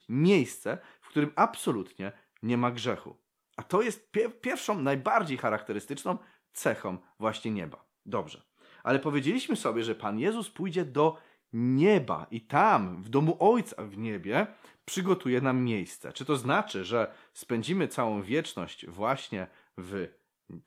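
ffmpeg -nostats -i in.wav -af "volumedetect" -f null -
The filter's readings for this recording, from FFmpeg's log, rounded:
mean_volume: -29.8 dB
max_volume: -9.0 dB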